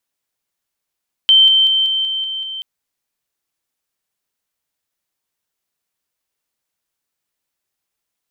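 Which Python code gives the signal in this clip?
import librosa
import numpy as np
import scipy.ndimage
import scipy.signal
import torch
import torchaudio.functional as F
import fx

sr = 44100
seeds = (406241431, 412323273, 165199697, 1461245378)

y = fx.level_ladder(sr, hz=3110.0, from_db=-6.0, step_db=-3.0, steps=7, dwell_s=0.19, gap_s=0.0)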